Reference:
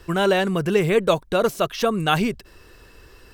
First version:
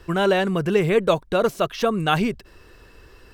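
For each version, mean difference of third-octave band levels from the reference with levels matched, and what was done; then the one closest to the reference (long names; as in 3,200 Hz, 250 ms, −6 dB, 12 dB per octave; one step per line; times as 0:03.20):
1.5 dB: high-shelf EQ 5,100 Hz −6 dB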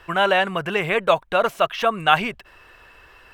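5.5 dB: flat-topped bell 1,400 Hz +12.5 dB 2.8 octaves
level −7.5 dB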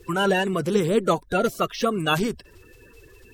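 3.0 dB: spectral magnitudes quantised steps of 30 dB
level −1.5 dB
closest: first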